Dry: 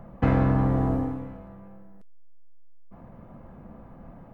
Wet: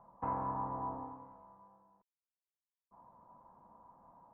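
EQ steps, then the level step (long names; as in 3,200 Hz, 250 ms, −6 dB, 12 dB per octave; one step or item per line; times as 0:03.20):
resonant band-pass 970 Hz, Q 11
spectral tilt −3.5 dB per octave
+3.0 dB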